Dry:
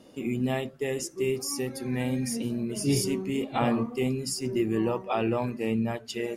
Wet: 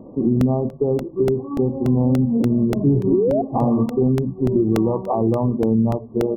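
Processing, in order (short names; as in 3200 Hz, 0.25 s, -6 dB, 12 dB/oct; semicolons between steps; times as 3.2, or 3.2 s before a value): brick-wall FIR low-pass 1200 Hz; painted sound rise, 3.12–3.42, 330–730 Hz -22 dBFS; compressor, threshold -28 dBFS, peak gain reduction 9 dB; low shelf 420 Hz +8.5 dB; crackling interface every 0.29 s, samples 64, repeat, from 0.41; gain +8.5 dB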